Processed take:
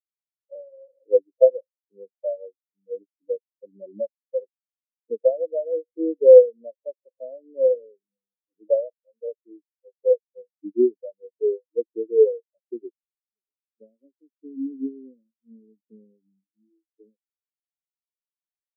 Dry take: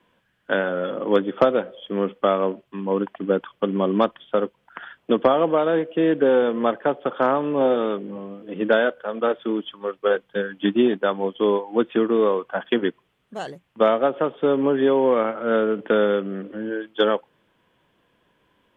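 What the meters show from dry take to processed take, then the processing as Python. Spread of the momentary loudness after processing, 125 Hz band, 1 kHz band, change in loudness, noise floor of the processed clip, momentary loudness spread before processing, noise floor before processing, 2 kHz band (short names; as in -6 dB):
19 LU, under -25 dB, under -25 dB, +0.5 dB, under -85 dBFS, 11 LU, -68 dBFS, under -40 dB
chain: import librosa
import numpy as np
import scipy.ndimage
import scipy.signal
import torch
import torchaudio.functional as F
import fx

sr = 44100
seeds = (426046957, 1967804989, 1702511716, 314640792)

y = fx.filter_sweep_lowpass(x, sr, from_hz=620.0, to_hz=290.0, start_s=11.54, end_s=14.49, q=1.5)
y = fx.spectral_expand(y, sr, expansion=4.0)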